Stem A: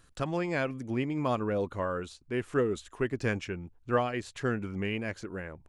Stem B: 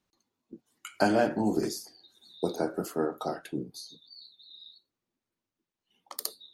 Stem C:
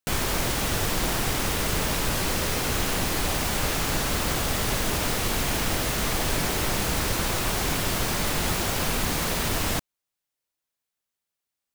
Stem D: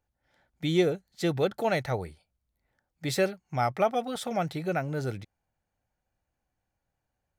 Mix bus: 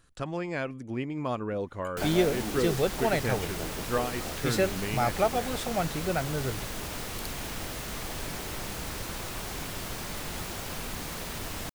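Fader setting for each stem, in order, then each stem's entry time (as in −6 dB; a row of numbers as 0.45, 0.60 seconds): −2.0, −10.0, −10.5, −0.5 decibels; 0.00, 1.00, 1.90, 1.40 seconds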